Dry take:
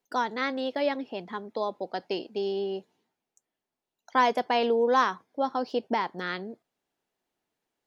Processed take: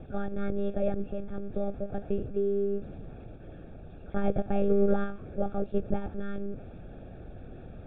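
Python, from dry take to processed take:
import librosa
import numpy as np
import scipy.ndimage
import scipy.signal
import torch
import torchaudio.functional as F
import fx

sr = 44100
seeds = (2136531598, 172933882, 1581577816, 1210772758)

y = x + 0.5 * 10.0 ** (-35.0 / 20.0) * np.sign(x)
y = fx.lpc_monotone(y, sr, seeds[0], pitch_hz=200.0, order=8)
y = np.convolve(y, np.full(44, 1.0 / 44))[:len(y)]
y = y * librosa.db_to_amplitude(2.5)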